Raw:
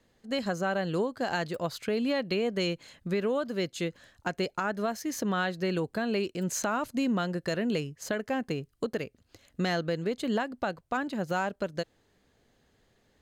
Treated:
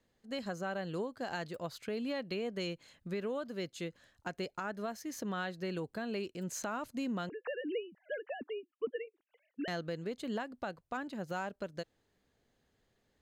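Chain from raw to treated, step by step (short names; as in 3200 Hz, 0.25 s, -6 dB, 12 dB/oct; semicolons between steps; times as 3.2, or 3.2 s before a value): 7.29–9.68 sine-wave speech; gain -8.5 dB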